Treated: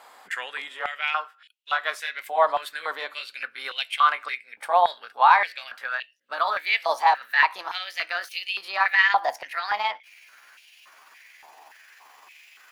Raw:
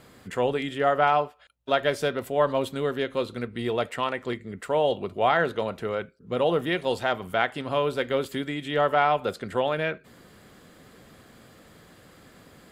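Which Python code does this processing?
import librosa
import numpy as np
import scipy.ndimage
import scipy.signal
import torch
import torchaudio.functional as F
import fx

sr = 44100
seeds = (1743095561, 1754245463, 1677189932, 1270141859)

y = fx.pitch_glide(x, sr, semitones=7.0, runs='starting unshifted')
y = fx.rider(y, sr, range_db=3, speed_s=2.0)
y = fx.filter_held_highpass(y, sr, hz=3.5, low_hz=850.0, high_hz=2800.0)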